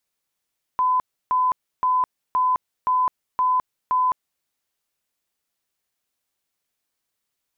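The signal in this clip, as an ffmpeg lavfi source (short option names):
-f lavfi -i "aevalsrc='0.15*sin(2*PI*1010*mod(t,0.52))*lt(mod(t,0.52),211/1010)':d=3.64:s=44100"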